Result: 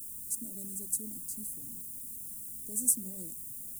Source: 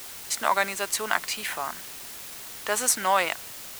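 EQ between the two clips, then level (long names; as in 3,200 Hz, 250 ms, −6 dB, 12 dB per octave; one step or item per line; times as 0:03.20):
elliptic band-stop filter 250–8,800 Hz, stop band 60 dB
mains-hum notches 50/100/150/200 Hz
0.0 dB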